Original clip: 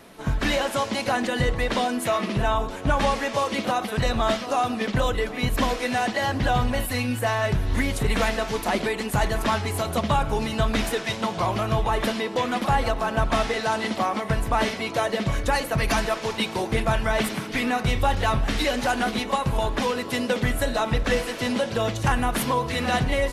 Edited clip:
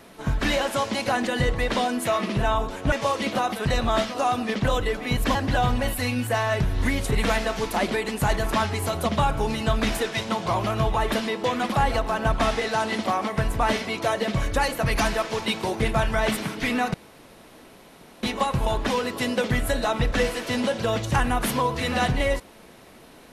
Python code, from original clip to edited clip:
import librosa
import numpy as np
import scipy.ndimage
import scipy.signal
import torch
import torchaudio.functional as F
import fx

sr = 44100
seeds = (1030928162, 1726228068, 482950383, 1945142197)

y = fx.edit(x, sr, fx.cut(start_s=2.92, length_s=0.32),
    fx.cut(start_s=5.67, length_s=0.6),
    fx.room_tone_fill(start_s=17.86, length_s=1.29), tone=tone)